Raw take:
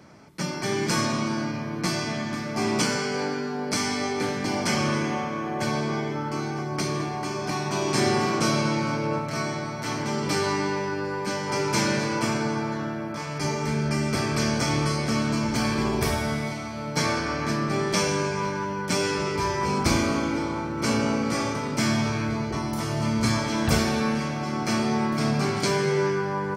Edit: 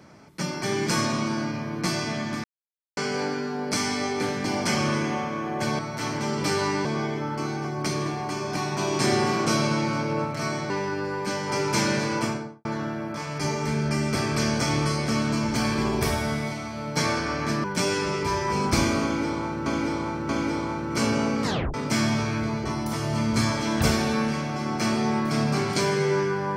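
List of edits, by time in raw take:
2.44–2.97 mute
9.64–10.7 move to 5.79
12.16–12.65 studio fade out
17.64–18.77 cut
20.16–20.79 loop, 3 plays
21.3 tape stop 0.31 s

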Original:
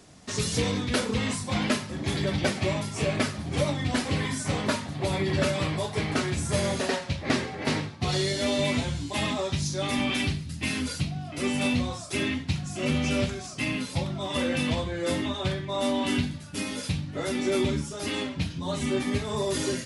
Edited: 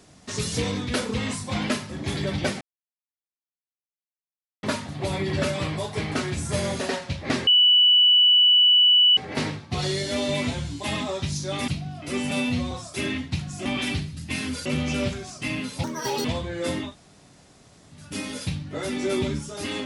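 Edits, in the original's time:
2.61–4.63 mute
7.47 add tone 2960 Hz -13 dBFS 1.70 s
9.98–10.98 move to 12.82
11.61–11.88 stretch 1.5×
14–14.67 speed 163%
15.3–16.39 room tone, crossfade 0.16 s

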